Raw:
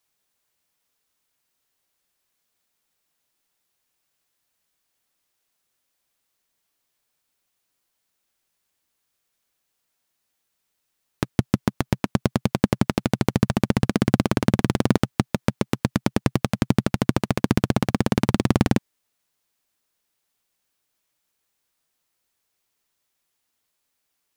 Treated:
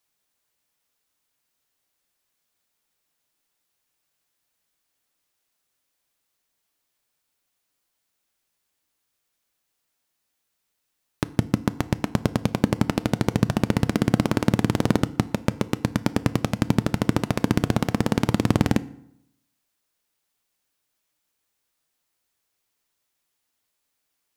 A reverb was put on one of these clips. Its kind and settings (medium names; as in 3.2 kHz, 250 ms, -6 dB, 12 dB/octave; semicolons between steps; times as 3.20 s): FDN reverb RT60 0.76 s, low-frequency decay 1.1×, high-frequency decay 0.7×, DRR 14.5 dB; trim -1 dB